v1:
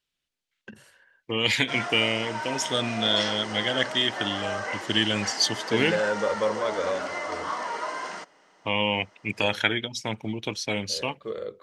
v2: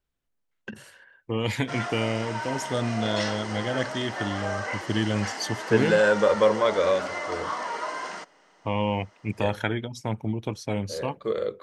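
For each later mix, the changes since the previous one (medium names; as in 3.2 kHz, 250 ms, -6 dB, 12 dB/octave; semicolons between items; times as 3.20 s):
first voice +6.0 dB; second voice: remove frequency weighting D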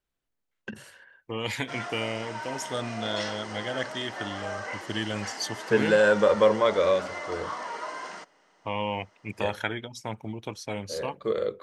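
second voice: add bass shelf 430 Hz -9.5 dB; background -4.0 dB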